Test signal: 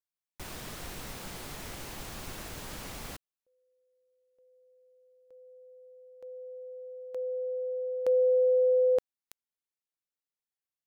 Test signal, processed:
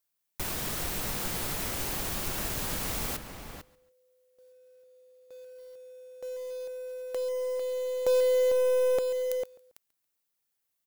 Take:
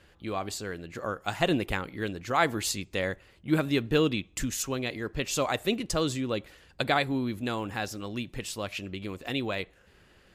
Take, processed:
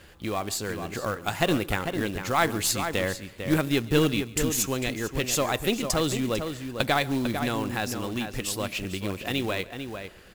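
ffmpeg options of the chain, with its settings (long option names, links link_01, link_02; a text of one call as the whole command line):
ffmpeg -i in.wav -filter_complex "[0:a]asplit=2[link_01][link_02];[link_02]acompressor=threshold=-39dB:ratio=12:attack=15:release=448:knee=1:detection=peak,volume=2.5dB[link_03];[link_01][link_03]amix=inputs=2:normalize=0,highshelf=frequency=10000:gain=9.5,asplit=2[link_04][link_05];[link_05]aecho=0:1:139|278:0.0891|0.0285[link_06];[link_04][link_06]amix=inputs=2:normalize=0,aeval=exprs='0.447*(cos(1*acos(clip(val(0)/0.447,-1,1)))-cos(1*PI/2))+0.00316*(cos(3*acos(clip(val(0)/0.447,-1,1)))-cos(3*PI/2))+0.0224*(cos(4*acos(clip(val(0)/0.447,-1,1)))-cos(4*PI/2))+0.00355*(cos(8*acos(clip(val(0)/0.447,-1,1)))-cos(8*PI/2))':channel_layout=same,asplit=2[link_07][link_08];[link_08]adelay=449,volume=-7dB,highshelf=frequency=4000:gain=-10.1[link_09];[link_07][link_09]amix=inputs=2:normalize=0,acrusher=bits=4:mode=log:mix=0:aa=0.000001" out.wav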